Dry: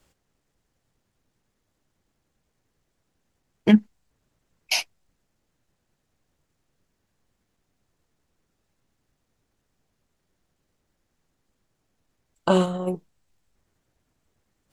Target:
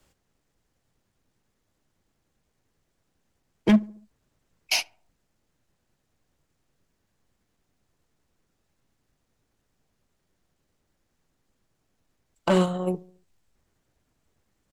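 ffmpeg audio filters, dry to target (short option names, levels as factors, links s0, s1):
-filter_complex "[0:a]acrossover=split=140[s0][s1];[s1]asoftclip=type=hard:threshold=0.178[s2];[s0][s2]amix=inputs=2:normalize=0,asplit=2[s3][s4];[s4]adelay=71,lowpass=f=1200:p=1,volume=0.075,asplit=2[s5][s6];[s6]adelay=71,lowpass=f=1200:p=1,volume=0.52,asplit=2[s7][s8];[s8]adelay=71,lowpass=f=1200:p=1,volume=0.52,asplit=2[s9][s10];[s10]adelay=71,lowpass=f=1200:p=1,volume=0.52[s11];[s3][s5][s7][s9][s11]amix=inputs=5:normalize=0"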